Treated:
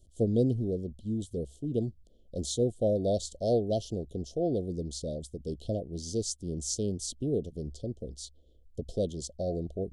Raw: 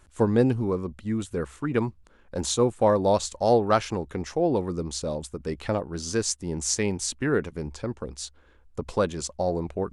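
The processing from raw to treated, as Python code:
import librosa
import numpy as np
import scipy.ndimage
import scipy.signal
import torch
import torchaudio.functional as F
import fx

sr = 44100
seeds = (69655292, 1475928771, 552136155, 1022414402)

y = scipy.signal.sosfilt(scipy.signal.cheby1(5, 1.0, [690.0, 3100.0], 'bandstop', fs=sr, output='sos'), x)
y = fx.low_shelf(y, sr, hz=230.0, db=5.0)
y = y * 10.0 ** (-6.5 / 20.0)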